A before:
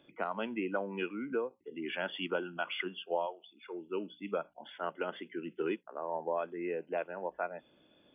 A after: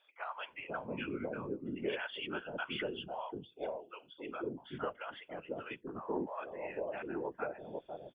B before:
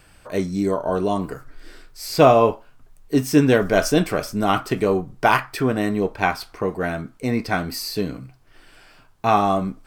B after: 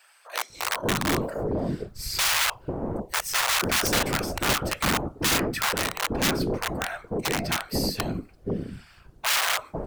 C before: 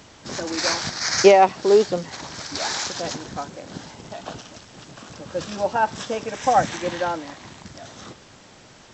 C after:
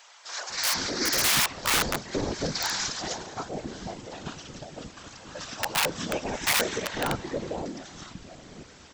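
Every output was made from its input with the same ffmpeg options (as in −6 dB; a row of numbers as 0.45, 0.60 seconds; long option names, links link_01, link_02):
-filter_complex "[0:a]afftfilt=real='hypot(re,im)*cos(2*PI*random(0))':imag='hypot(re,im)*sin(2*PI*random(1))':win_size=512:overlap=0.75,aeval=exprs='(mod(11.2*val(0)+1,2)-1)/11.2':channel_layout=same,acrossover=split=710[link_01][link_02];[link_01]adelay=500[link_03];[link_03][link_02]amix=inputs=2:normalize=0,volume=4dB"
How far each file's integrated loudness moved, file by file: −3.5, −5.0, −5.5 LU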